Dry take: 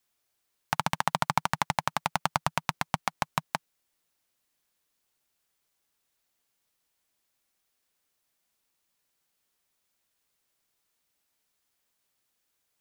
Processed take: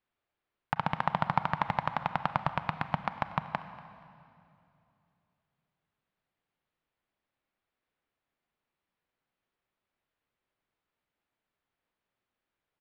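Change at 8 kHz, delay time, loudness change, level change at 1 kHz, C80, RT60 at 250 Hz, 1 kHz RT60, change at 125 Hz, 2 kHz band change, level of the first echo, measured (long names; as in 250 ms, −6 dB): below −25 dB, 238 ms, −2.0 dB, −1.5 dB, 11.5 dB, 3.2 s, 2.6 s, +0.5 dB, −3.5 dB, −21.0 dB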